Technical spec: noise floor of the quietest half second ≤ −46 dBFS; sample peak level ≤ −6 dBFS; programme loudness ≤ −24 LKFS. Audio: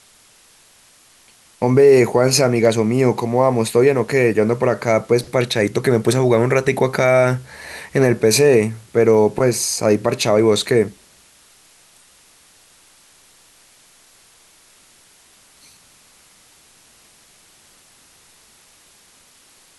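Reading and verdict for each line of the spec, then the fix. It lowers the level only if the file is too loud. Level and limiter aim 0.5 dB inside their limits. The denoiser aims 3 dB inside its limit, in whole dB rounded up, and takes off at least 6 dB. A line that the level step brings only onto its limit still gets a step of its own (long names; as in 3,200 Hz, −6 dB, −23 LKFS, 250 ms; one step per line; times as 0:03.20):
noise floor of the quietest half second −51 dBFS: in spec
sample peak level −3.0 dBFS: out of spec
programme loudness −16.0 LKFS: out of spec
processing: level −8.5 dB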